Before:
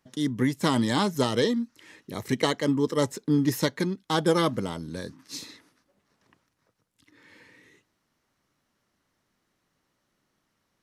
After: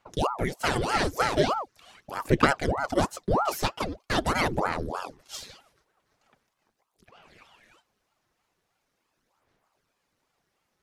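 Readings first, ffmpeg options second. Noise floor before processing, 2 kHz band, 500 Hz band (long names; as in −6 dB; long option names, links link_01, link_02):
−76 dBFS, +4.5 dB, −1.0 dB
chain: -af "aphaser=in_gain=1:out_gain=1:delay=4.3:decay=0.59:speed=0.42:type=sinusoidal,aeval=exprs='val(0)*sin(2*PI*610*n/s+610*0.85/3.2*sin(2*PI*3.2*n/s))':channel_layout=same"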